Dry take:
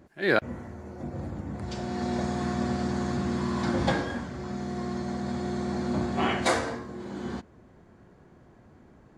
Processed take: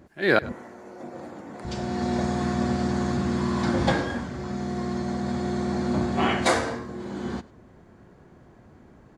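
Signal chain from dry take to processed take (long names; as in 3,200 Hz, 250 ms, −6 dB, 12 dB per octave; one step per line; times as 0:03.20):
0:00.52–0:01.65: high-pass filter 340 Hz 12 dB per octave
on a send: single-tap delay 100 ms −21 dB
on the sum: level +3 dB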